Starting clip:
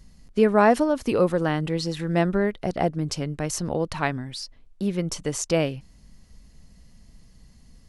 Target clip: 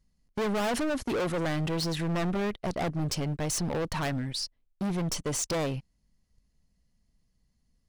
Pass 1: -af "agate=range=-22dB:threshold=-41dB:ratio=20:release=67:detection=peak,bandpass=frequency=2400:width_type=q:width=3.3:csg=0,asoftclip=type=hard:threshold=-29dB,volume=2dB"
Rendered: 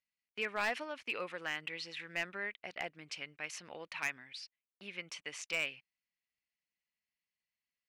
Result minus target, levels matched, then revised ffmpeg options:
2,000 Hz band +9.5 dB
-af "agate=range=-22dB:threshold=-41dB:ratio=20:release=67:detection=peak,asoftclip=type=hard:threshold=-29dB,volume=2dB"

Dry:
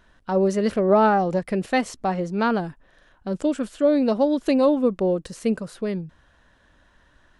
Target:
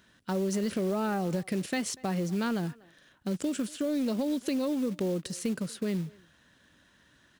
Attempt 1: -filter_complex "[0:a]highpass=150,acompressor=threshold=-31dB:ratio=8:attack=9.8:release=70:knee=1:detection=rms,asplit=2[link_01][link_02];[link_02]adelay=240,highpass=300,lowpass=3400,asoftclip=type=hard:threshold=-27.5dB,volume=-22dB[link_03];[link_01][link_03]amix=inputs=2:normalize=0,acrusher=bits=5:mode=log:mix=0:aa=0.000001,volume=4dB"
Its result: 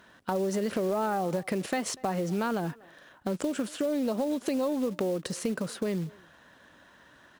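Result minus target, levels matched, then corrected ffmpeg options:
1,000 Hz band +4.5 dB
-filter_complex "[0:a]highpass=150,equalizer=frequency=800:width_type=o:width=2.4:gain=-12.5,acompressor=threshold=-31dB:ratio=8:attack=9.8:release=70:knee=1:detection=rms,asplit=2[link_01][link_02];[link_02]adelay=240,highpass=300,lowpass=3400,asoftclip=type=hard:threshold=-27.5dB,volume=-22dB[link_03];[link_01][link_03]amix=inputs=2:normalize=0,acrusher=bits=5:mode=log:mix=0:aa=0.000001,volume=4dB"

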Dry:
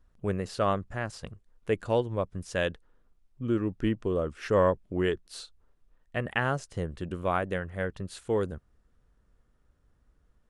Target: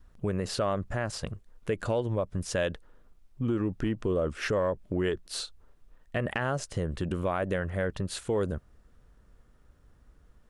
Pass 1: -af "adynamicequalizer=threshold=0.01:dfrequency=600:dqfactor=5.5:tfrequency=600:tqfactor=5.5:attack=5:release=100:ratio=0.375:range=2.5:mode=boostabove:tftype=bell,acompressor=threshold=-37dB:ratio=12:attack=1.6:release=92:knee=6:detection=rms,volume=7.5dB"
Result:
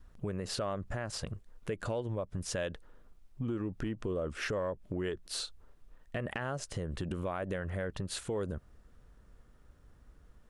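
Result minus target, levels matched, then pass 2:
downward compressor: peak gain reduction +7 dB
-af "adynamicequalizer=threshold=0.01:dfrequency=600:dqfactor=5.5:tfrequency=600:tqfactor=5.5:attack=5:release=100:ratio=0.375:range=2.5:mode=boostabove:tftype=bell,acompressor=threshold=-29.5dB:ratio=12:attack=1.6:release=92:knee=6:detection=rms,volume=7.5dB"

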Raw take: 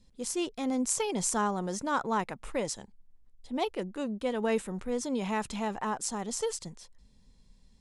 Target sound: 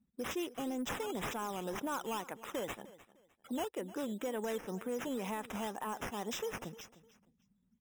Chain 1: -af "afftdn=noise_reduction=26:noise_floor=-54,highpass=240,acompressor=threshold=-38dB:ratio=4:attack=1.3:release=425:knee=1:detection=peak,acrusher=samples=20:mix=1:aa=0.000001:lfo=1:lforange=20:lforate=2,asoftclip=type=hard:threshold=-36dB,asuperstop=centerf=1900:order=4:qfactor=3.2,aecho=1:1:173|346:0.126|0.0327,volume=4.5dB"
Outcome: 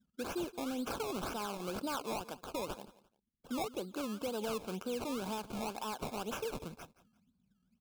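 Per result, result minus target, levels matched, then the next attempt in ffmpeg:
echo 131 ms early; sample-and-hold swept by an LFO: distortion +6 dB; 2,000 Hz band −2.0 dB
-af "afftdn=noise_reduction=26:noise_floor=-54,highpass=240,acompressor=threshold=-38dB:ratio=4:attack=1.3:release=425:knee=1:detection=peak,acrusher=samples=20:mix=1:aa=0.000001:lfo=1:lforange=20:lforate=2,asoftclip=type=hard:threshold=-36dB,asuperstop=centerf=1900:order=4:qfactor=3.2,aecho=1:1:304|608:0.126|0.0327,volume=4.5dB"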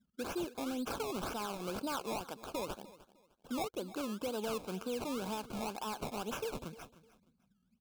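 sample-and-hold swept by an LFO: distortion +6 dB; 2,000 Hz band −2.0 dB
-af "afftdn=noise_reduction=26:noise_floor=-54,highpass=240,acompressor=threshold=-38dB:ratio=4:attack=1.3:release=425:knee=1:detection=peak,acrusher=samples=8:mix=1:aa=0.000001:lfo=1:lforange=8:lforate=2,asoftclip=type=hard:threshold=-36dB,asuperstop=centerf=1900:order=4:qfactor=3.2,aecho=1:1:304|608:0.126|0.0327,volume=4.5dB"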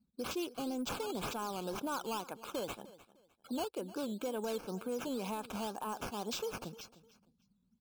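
2,000 Hz band −3.0 dB
-af "afftdn=noise_reduction=26:noise_floor=-54,highpass=240,acompressor=threshold=-38dB:ratio=4:attack=1.3:release=425:knee=1:detection=peak,acrusher=samples=8:mix=1:aa=0.000001:lfo=1:lforange=8:lforate=2,asoftclip=type=hard:threshold=-36dB,asuperstop=centerf=4400:order=4:qfactor=3.2,aecho=1:1:304|608:0.126|0.0327,volume=4.5dB"

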